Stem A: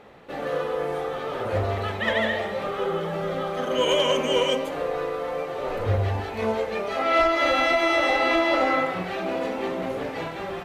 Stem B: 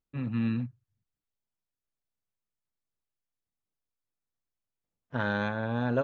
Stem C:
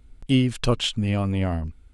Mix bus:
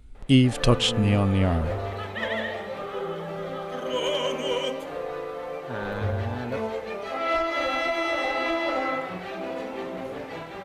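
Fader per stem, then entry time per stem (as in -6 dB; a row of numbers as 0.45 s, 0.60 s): -5.0 dB, -4.5 dB, +2.0 dB; 0.15 s, 0.55 s, 0.00 s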